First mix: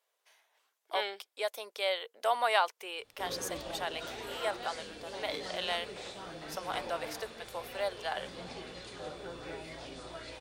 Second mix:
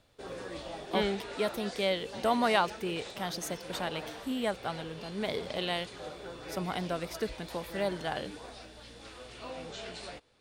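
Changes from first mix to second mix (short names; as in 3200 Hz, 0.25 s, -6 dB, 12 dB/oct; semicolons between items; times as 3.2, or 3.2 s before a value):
speech: remove HPF 540 Hz 24 dB/oct; background: entry -3.00 s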